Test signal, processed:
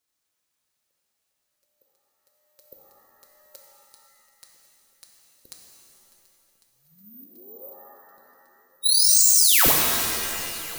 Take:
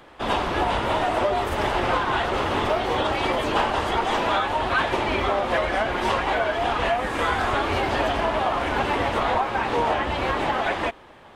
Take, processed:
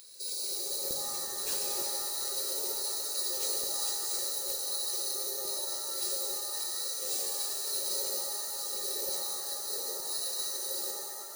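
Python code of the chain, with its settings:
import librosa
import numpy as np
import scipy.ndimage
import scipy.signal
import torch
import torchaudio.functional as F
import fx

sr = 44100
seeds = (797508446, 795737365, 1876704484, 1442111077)

p1 = fx.peak_eq(x, sr, hz=99.0, db=-13.5, octaves=2.8)
p2 = p1 + 0.87 * np.pad(p1, (int(5.1 * sr / 1000.0), 0))[:len(p1)]
p3 = fx.over_compress(p2, sr, threshold_db=-30.0, ratio=-1.0)
p4 = p2 + F.gain(torch.from_numpy(p3), 2.0).numpy()
p5 = fx.filter_lfo_highpass(p4, sr, shape='saw_down', hz=1.1, low_hz=980.0, high_hz=2300.0, q=1.7)
p6 = fx.brickwall_bandstop(p5, sr, low_hz=560.0, high_hz=3800.0)
p7 = p6 + fx.echo_heads(p6, sr, ms=367, heads='second and third', feedback_pct=65, wet_db=-21.5, dry=0)
p8 = (np.kron(p7[::3], np.eye(3)[0]) * 3)[:len(p7)]
p9 = fx.rev_shimmer(p8, sr, seeds[0], rt60_s=2.0, semitones=7, shimmer_db=-2, drr_db=1.0)
y = F.gain(torch.from_numpy(p9), -4.0).numpy()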